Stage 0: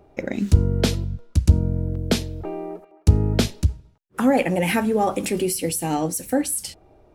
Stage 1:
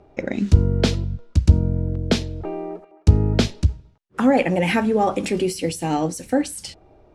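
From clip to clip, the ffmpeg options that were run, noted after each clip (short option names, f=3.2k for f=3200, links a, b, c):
-af "lowpass=6.3k,volume=1.5dB"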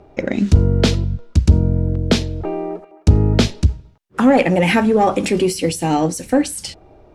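-af "acontrast=65,volume=-1dB"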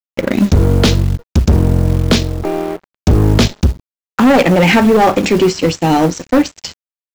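-af "aresample=16000,aeval=exprs='sgn(val(0))*max(abs(val(0))-0.0211,0)':c=same,aresample=44100,acrusher=bits=6:mode=log:mix=0:aa=0.000001,asoftclip=type=hard:threshold=-13dB,volume=7.5dB"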